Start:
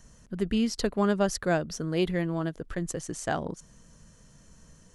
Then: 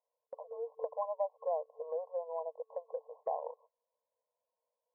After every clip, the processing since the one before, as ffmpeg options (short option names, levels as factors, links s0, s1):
-af "afftfilt=real='re*between(b*sr/4096,450,1100)':imag='im*between(b*sr/4096,450,1100)':win_size=4096:overlap=0.75,agate=range=0.0398:threshold=0.00141:ratio=16:detection=peak,acompressor=threshold=0.00355:ratio=2,volume=2.24"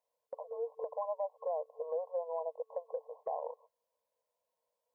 -af "alimiter=level_in=2:limit=0.0631:level=0:latency=1:release=51,volume=0.501,volume=1.33"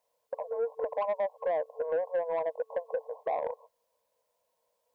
-af "asoftclip=type=tanh:threshold=0.0266,volume=2.66"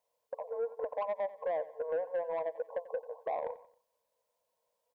-af "aecho=1:1:90|180|270:0.141|0.0565|0.0226,volume=0.631"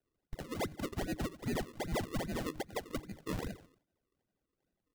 -af "lowpass=f=2100:t=q:w=0.5098,lowpass=f=2100:t=q:w=0.6013,lowpass=f=2100:t=q:w=0.9,lowpass=f=2100:t=q:w=2.563,afreqshift=-2500,acrusher=samples=39:mix=1:aa=0.000001:lfo=1:lforange=39:lforate=2.5,bandreject=f=154.4:t=h:w=4,bandreject=f=308.8:t=h:w=4,volume=0.794"